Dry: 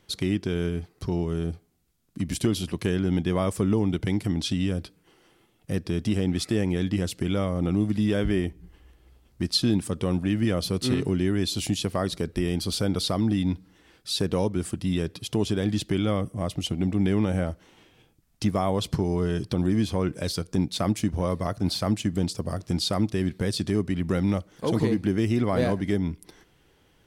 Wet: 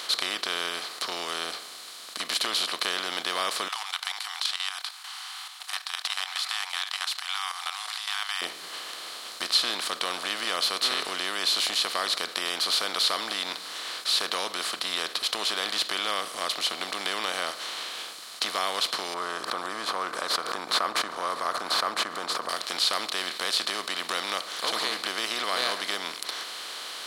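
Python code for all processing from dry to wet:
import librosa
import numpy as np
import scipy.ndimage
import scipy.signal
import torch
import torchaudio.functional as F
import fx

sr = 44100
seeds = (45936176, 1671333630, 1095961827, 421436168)

y = fx.chain(x, sr, fx.brickwall_highpass(low_hz=730.0),
    fx.level_steps(step_db=14), at=(3.68, 8.42))
y = fx.chain(y, sr, fx.curve_eq(hz=(710.0, 1200.0, 2900.0), db=(0, 7, -26)),
    fx.pre_swell(db_per_s=51.0), at=(19.14, 22.49))
y = fx.bin_compress(y, sr, power=0.4)
y = scipy.signal.sosfilt(scipy.signal.butter(2, 1200.0, 'highpass', fs=sr, output='sos'), y)
y = fx.dynamic_eq(y, sr, hz=8200.0, q=0.79, threshold_db=-39.0, ratio=4.0, max_db=-5)
y = y * librosa.db_to_amplitude(1.0)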